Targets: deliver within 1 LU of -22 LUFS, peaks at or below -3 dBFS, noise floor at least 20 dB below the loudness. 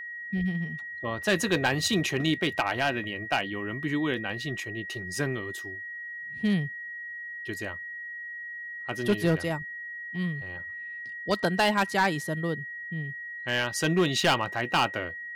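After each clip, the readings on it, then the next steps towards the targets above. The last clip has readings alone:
clipped samples 0.4%; clipping level -17.0 dBFS; steady tone 1.9 kHz; tone level -36 dBFS; loudness -29.0 LUFS; peak level -17.0 dBFS; loudness target -22.0 LUFS
-> clip repair -17 dBFS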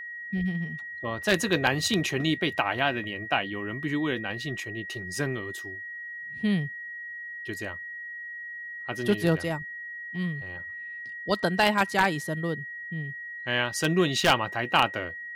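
clipped samples 0.0%; steady tone 1.9 kHz; tone level -36 dBFS
-> band-stop 1.9 kHz, Q 30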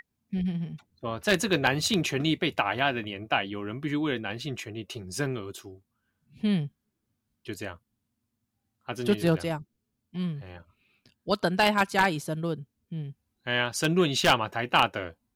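steady tone not found; loudness -27.5 LUFS; peak level -7.5 dBFS; loudness target -22.0 LUFS
-> trim +5.5 dB; peak limiter -3 dBFS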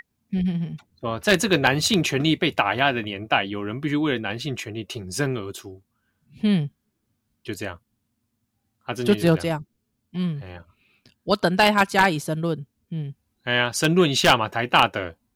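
loudness -22.5 LUFS; peak level -3.0 dBFS; noise floor -75 dBFS

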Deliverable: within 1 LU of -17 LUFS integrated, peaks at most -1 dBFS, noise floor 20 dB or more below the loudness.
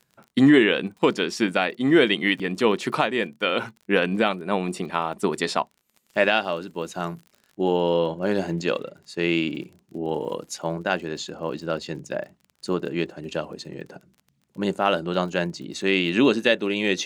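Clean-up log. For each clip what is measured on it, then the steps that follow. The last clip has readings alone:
tick rate 35 per s; loudness -24.0 LUFS; peak level -5.5 dBFS; loudness target -17.0 LUFS
-> de-click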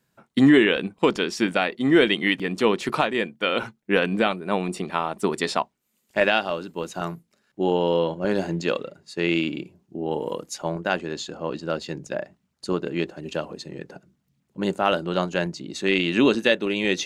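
tick rate 0.059 per s; loudness -24.0 LUFS; peak level -5.5 dBFS; loudness target -17.0 LUFS
-> trim +7 dB; peak limiter -1 dBFS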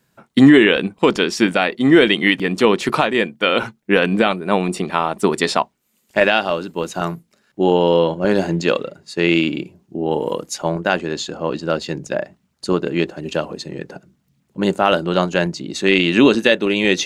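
loudness -17.5 LUFS; peak level -1.0 dBFS; noise floor -66 dBFS

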